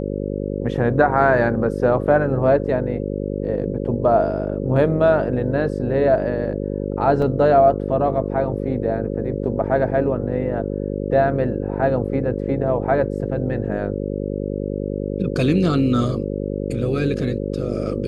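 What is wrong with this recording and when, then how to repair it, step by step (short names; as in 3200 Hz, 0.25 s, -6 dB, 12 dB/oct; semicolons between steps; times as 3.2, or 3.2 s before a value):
buzz 50 Hz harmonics 11 -25 dBFS
7.22 gap 3.5 ms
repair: de-hum 50 Hz, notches 11; interpolate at 7.22, 3.5 ms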